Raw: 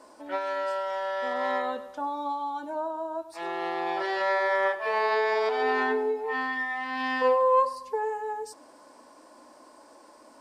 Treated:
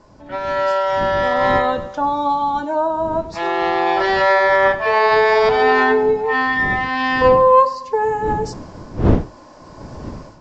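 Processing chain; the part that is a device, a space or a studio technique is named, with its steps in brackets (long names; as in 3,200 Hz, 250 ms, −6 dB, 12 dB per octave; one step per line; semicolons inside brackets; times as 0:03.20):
smartphone video outdoors (wind on the microphone 260 Hz −38 dBFS; automatic gain control gain up to 13 dB; AAC 64 kbit/s 16,000 Hz)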